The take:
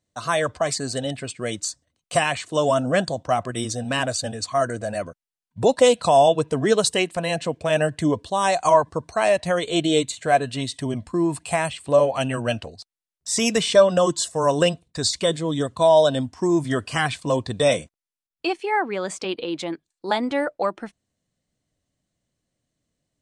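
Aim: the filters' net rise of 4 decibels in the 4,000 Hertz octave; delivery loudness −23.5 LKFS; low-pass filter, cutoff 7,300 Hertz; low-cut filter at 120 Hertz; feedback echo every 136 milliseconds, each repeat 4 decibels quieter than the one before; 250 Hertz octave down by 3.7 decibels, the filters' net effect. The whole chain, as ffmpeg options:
ffmpeg -i in.wav -af "highpass=120,lowpass=7300,equalizer=frequency=250:width_type=o:gain=-5,equalizer=frequency=4000:width_type=o:gain=5.5,aecho=1:1:136|272|408|544|680|816|952|1088|1224:0.631|0.398|0.25|0.158|0.0994|0.0626|0.0394|0.0249|0.0157,volume=-3.5dB" out.wav

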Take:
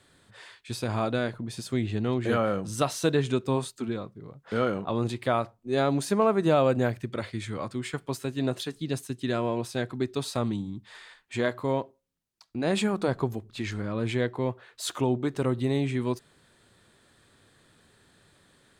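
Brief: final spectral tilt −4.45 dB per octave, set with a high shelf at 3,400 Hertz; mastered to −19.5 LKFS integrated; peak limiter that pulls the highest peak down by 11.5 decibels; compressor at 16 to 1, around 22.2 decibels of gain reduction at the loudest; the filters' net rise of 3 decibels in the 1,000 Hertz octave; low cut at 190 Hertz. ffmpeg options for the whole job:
ffmpeg -i in.wav -af "highpass=190,equalizer=frequency=1000:width_type=o:gain=4.5,highshelf=frequency=3400:gain=-5,acompressor=threshold=-39dB:ratio=16,volume=28.5dB,alimiter=limit=-8dB:level=0:latency=1" out.wav

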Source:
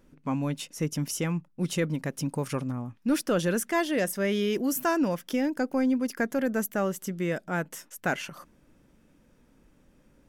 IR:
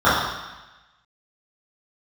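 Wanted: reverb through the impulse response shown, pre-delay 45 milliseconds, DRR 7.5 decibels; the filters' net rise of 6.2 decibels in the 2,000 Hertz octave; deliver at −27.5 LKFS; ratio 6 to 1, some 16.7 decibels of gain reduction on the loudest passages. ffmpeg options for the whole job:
-filter_complex "[0:a]equalizer=frequency=2000:width_type=o:gain=8,acompressor=threshold=-39dB:ratio=6,asplit=2[link_01][link_02];[1:a]atrim=start_sample=2205,adelay=45[link_03];[link_02][link_03]afir=irnorm=-1:irlink=0,volume=-34dB[link_04];[link_01][link_04]amix=inputs=2:normalize=0,volume=14dB"

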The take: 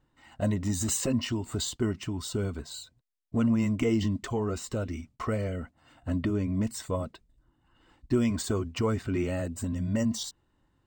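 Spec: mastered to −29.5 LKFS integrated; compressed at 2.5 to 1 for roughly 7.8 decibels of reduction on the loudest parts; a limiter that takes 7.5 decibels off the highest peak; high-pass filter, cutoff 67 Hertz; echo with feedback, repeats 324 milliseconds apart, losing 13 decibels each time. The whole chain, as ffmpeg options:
ffmpeg -i in.wav -af "highpass=67,acompressor=threshold=-33dB:ratio=2.5,alimiter=level_in=5dB:limit=-24dB:level=0:latency=1,volume=-5dB,aecho=1:1:324|648|972:0.224|0.0493|0.0108,volume=9dB" out.wav

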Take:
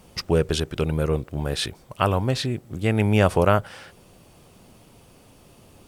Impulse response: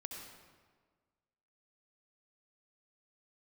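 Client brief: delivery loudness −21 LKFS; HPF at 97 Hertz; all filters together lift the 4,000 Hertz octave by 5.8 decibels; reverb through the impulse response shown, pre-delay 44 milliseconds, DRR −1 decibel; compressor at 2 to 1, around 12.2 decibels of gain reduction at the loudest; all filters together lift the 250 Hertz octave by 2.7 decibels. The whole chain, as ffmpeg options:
-filter_complex "[0:a]highpass=97,equalizer=frequency=250:width_type=o:gain=4,equalizer=frequency=4000:width_type=o:gain=7,acompressor=threshold=-35dB:ratio=2,asplit=2[link_01][link_02];[1:a]atrim=start_sample=2205,adelay=44[link_03];[link_02][link_03]afir=irnorm=-1:irlink=0,volume=3.5dB[link_04];[link_01][link_04]amix=inputs=2:normalize=0,volume=8dB"

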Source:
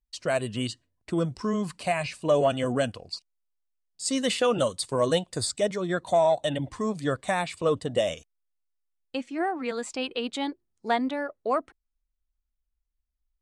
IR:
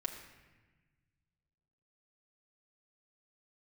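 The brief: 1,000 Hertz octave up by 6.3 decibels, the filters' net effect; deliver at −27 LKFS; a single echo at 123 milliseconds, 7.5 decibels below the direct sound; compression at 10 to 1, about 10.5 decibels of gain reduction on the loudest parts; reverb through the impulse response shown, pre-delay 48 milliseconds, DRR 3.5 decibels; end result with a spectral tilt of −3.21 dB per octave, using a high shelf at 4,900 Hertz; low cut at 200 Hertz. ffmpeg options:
-filter_complex "[0:a]highpass=200,equalizer=frequency=1000:width_type=o:gain=8.5,highshelf=frequency=4900:gain=4,acompressor=threshold=-24dB:ratio=10,aecho=1:1:123:0.422,asplit=2[link_01][link_02];[1:a]atrim=start_sample=2205,adelay=48[link_03];[link_02][link_03]afir=irnorm=-1:irlink=0,volume=-5dB[link_04];[link_01][link_04]amix=inputs=2:normalize=0,volume=1.5dB"

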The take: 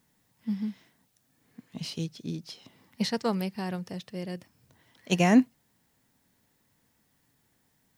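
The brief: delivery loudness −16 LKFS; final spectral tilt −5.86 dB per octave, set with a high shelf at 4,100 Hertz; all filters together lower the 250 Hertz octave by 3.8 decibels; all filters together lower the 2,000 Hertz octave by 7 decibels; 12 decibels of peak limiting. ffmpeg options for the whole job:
ffmpeg -i in.wav -af "equalizer=frequency=250:width_type=o:gain=-4.5,equalizer=frequency=2000:width_type=o:gain=-7,highshelf=frequency=4100:gain=-6.5,volume=21.5dB,alimiter=limit=-3dB:level=0:latency=1" out.wav

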